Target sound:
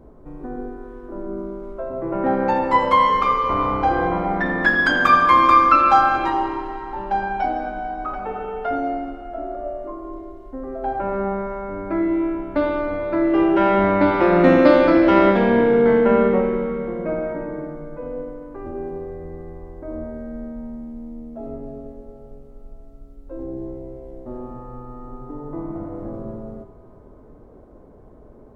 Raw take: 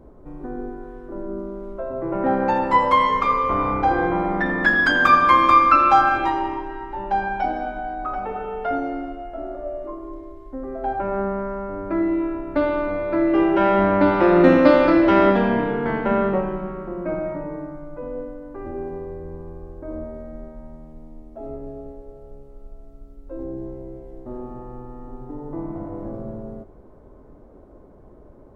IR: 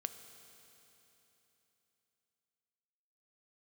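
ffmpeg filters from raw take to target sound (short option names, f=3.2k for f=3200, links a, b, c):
-filter_complex "[1:a]atrim=start_sample=2205[a];[0:a][a]afir=irnorm=-1:irlink=0,volume=2.5dB"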